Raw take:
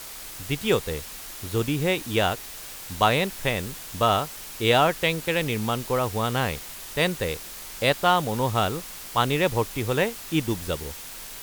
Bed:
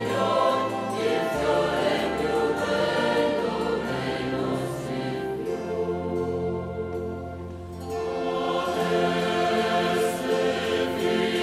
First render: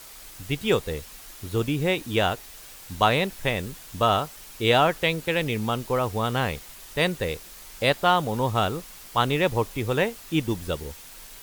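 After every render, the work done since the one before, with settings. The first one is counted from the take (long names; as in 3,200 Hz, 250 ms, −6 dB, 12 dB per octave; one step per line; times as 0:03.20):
broadband denoise 6 dB, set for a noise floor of −39 dBFS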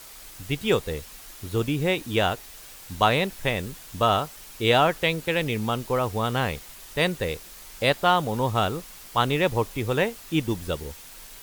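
no processing that can be heard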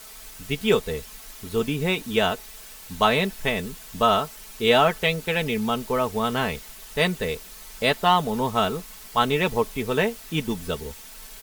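comb filter 4.6 ms, depth 61%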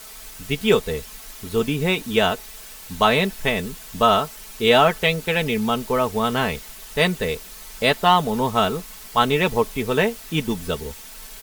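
level +3 dB
brickwall limiter −3 dBFS, peak gain reduction 1 dB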